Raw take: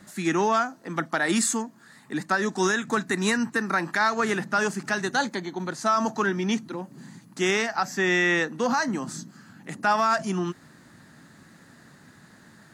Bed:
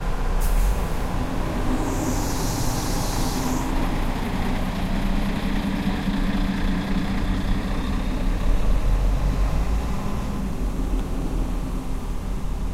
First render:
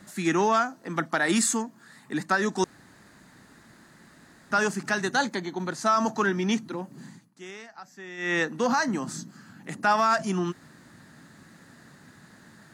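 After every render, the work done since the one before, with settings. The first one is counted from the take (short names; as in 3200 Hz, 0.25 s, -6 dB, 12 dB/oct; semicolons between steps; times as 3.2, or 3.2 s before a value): 2.64–4.51 room tone; 7.06–8.42 dip -18.5 dB, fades 0.25 s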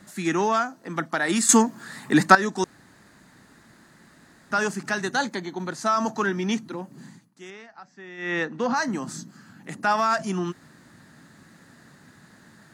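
1.49–2.35 gain +11.5 dB; 7.5–8.76 air absorption 120 m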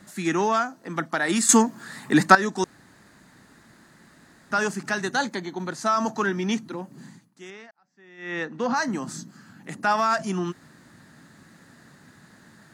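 7.71–8.73 fade in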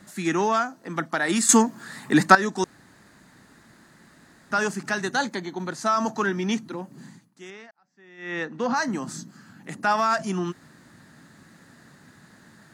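nothing audible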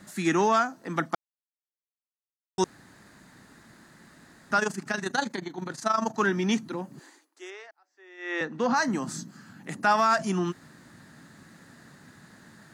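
1.15–2.58 mute; 4.59–6.2 AM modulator 25 Hz, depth 60%; 6.99–8.41 steep high-pass 300 Hz 72 dB/oct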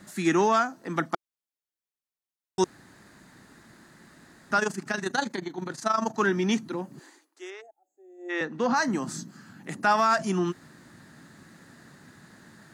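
bell 360 Hz +2.5 dB 0.36 oct; 7.61–8.3 spectral gain 880–6400 Hz -30 dB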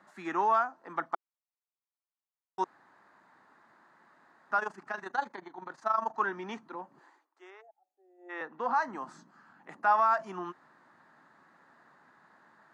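band-pass 980 Hz, Q 1.9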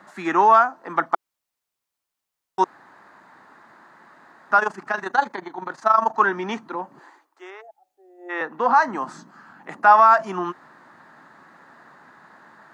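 gain +12 dB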